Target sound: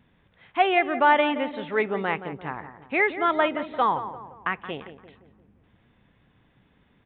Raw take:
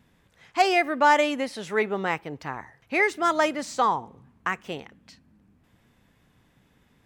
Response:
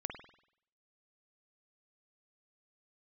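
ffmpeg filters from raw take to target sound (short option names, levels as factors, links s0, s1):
-filter_complex "[0:a]asplit=2[s0][s1];[s1]adelay=173,lowpass=f=1400:p=1,volume=0.299,asplit=2[s2][s3];[s3]adelay=173,lowpass=f=1400:p=1,volume=0.49,asplit=2[s4][s5];[s5]adelay=173,lowpass=f=1400:p=1,volume=0.49,asplit=2[s6][s7];[s7]adelay=173,lowpass=f=1400:p=1,volume=0.49,asplit=2[s8][s9];[s9]adelay=173,lowpass=f=1400:p=1,volume=0.49[s10];[s2][s4][s6][s8][s10]amix=inputs=5:normalize=0[s11];[s0][s11]amix=inputs=2:normalize=0,aresample=8000,aresample=44100"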